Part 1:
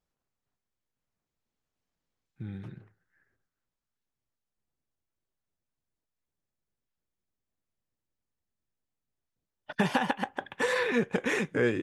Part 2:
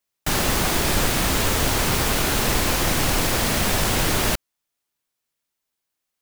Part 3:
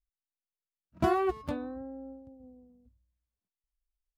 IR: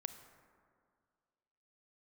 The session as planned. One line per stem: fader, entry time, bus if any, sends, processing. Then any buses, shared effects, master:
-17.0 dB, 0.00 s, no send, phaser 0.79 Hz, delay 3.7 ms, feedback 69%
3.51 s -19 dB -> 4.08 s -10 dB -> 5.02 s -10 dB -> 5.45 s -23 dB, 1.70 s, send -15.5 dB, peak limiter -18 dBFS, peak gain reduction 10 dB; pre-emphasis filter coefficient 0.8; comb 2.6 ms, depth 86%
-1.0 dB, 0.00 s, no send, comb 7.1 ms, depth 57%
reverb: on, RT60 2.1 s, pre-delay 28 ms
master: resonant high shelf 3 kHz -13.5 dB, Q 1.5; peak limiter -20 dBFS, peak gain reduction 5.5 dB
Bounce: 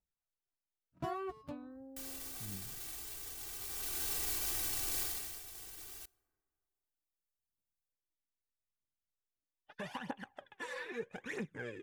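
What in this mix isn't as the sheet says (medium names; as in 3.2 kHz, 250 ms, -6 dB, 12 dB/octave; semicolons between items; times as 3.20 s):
stem 2: send -15.5 dB -> -9.5 dB; stem 3 -1.0 dB -> -13.0 dB; master: missing resonant high shelf 3 kHz -13.5 dB, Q 1.5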